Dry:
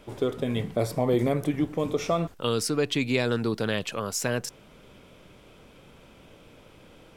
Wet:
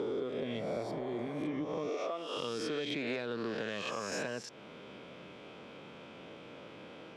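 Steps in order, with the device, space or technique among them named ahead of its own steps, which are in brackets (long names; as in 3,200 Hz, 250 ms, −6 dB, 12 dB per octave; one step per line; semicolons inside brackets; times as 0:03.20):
peak hold with a rise ahead of every peak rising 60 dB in 1.22 s
AM radio (band-pass filter 180–4,100 Hz; downward compressor 5 to 1, threshold −35 dBFS, peak gain reduction 15.5 dB; soft clipping −25.5 dBFS, distortion −24 dB)
0:00.91–0:01.57: healed spectral selection 420–1,500 Hz both
0:01.89–0:02.37: high-pass filter 280 Hz 24 dB per octave
level +1 dB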